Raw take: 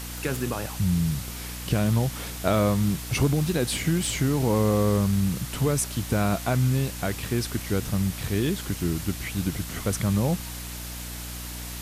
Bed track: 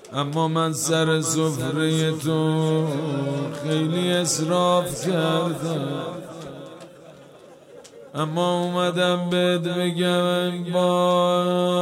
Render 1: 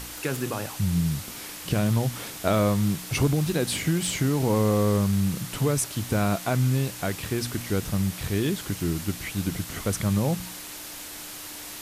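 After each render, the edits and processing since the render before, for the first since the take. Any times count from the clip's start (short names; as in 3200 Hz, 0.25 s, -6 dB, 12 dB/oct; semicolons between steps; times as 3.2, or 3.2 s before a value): de-hum 60 Hz, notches 4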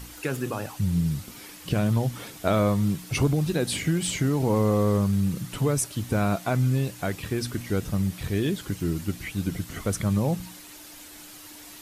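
denoiser 8 dB, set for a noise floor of -39 dBFS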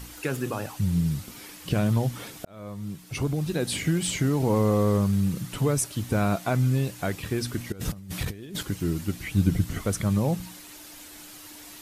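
2.45–3.85 fade in; 7.72–8.63 negative-ratio compressor -32 dBFS, ratio -0.5; 9.31–9.78 low shelf 220 Hz +10.5 dB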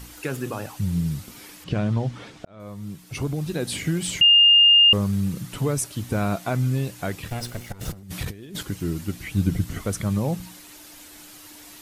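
1.64–2.6 air absorption 110 m; 4.21–4.93 bleep 2820 Hz -10.5 dBFS; 7.28–8.03 minimum comb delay 1.4 ms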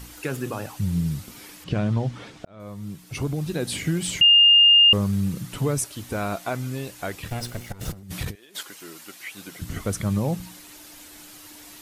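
5.84–7.23 bell 140 Hz -9 dB 1.7 oct; 8.35–9.62 HPF 690 Hz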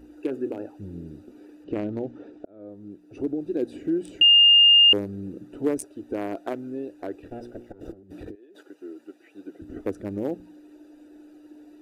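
Wiener smoothing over 41 samples; resonant low shelf 220 Hz -12 dB, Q 3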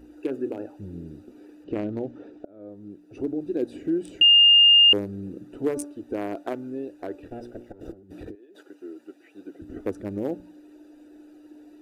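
de-hum 290.7 Hz, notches 5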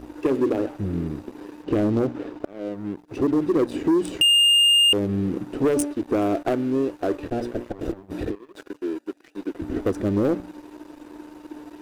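compressor 5:1, threshold -23 dBFS, peak gain reduction 9 dB; sample leveller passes 3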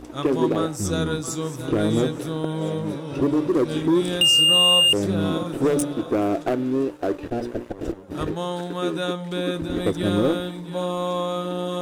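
add bed track -6.5 dB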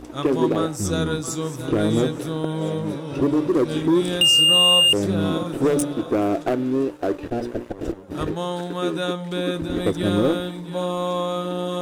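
gain +1 dB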